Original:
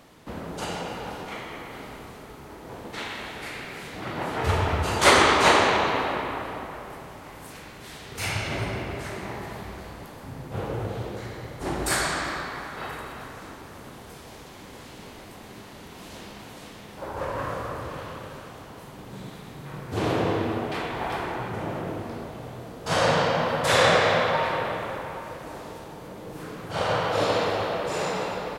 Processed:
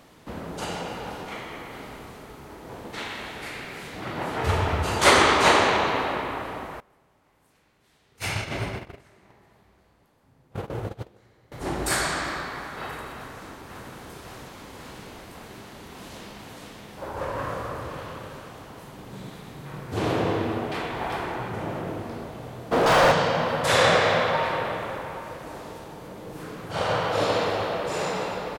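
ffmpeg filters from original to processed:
-filter_complex "[0:a]asettb=1/sr,asplit=3[a][b][c];[a]atrim=end=6.804[d];[b]atrim=start=6.8:end=11.52,asetpts=PTS-STARTPTS,afade=t=in:d=0.004:c=qsin,afade=t=out:st=4.716:d=0.004:c=qsin,agate=range=-22dB:threshold=-31dB:ratio=16:release=100:detection=peak[e];[c]atrim=start=11.516[f];[d][e]acrossfade=d=0.004:c1=hsin:c2=qsin[g];[g][f]acrossfade=d=0.004:c1=qsin:c2=hsin,asplit=2[h][i];[i]afade=t=in:st=13.14:d=0.01,afade=t=out:st=13.92:d=0.01,aecho=0:1:550|1100|1650|2200|2750|3300|3850|4400|4950|5500|6050|6600:0.562341|0.449873|0.359898|0.287919|0.230335|0.184268|0.147414|0.117932|0.0943452|0.0754762|0.0603809|0.0483048[j];[h][j]amix=inputs=2:normalize=0,asplit=3[k][l][m];[k]afade=t=out:st=22.71:d=0.02[n];[l]asplit=2[o][p];[p]highpass=f=720:p=1,volume=37dB,asoftclip=type=tanh:threshold=-8.5dB[q];[o][q]amix=inputs=2:normalize=0,lowpass=f=1.3k:p=1,volume=-6dB,afade=t=in:st=22.71:d=0.02,afade=t=out:st=23.11:d=0.02[r];[m]afade=t=in:st=23.11:d=0.02[s];[n][r][s]amix=inputs=3:normalize=0"

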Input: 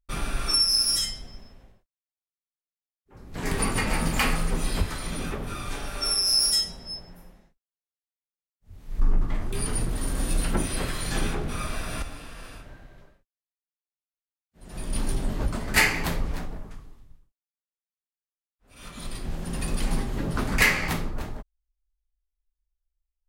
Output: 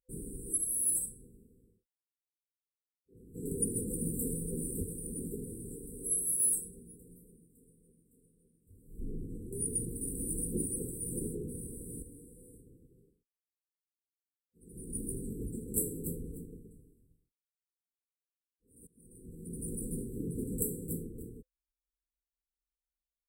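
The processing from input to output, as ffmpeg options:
-filter_complex "[0:a]asplit=2[a][b];[b]afade=t=in:st=3.64:d=0.01,afade=t=out:st=4.56:d=0.01,aecho=0:1:560|1120|1680|2240|2800|3360|3920|4480|5040:0.316228|0.205548|0.133606|0.0868441|0.0564486|0.0366916|0.0238495|0.0155022|0.0100764[c];[a][c]amix=inputs=2:normalize=0,asplit=2[d][e];[d]atrim=end=18.87,asetpts=PTS-STARTPTS,afade=t=out:st=18.866:d=0.004:c=hsin:silence=0.0707946[f];[e]atrim=start=18.87,asetpts=PTS-STARTPTS,afade=t=in:d=0.81:silence=0.0707946[g];[f][g]concat=n=2:v=0:a=1,highpass=f=170:p=1,afftfilt=real='re*(1-between(b*sr/4096,510,7600))':imag='im*(1-between(b*sr/4096,510,7600))':win_size=4096:overlap=0.75,adynamicequalizer=threshold=0.00631:dfrequency=6200:dqfactor=0.7:tfrequency=6200:tqfactor=0.7:attack=5:release=100:ratio=0.375:range=2:mode=boostabove:tftype=highshelf,volume=-4.5dB"

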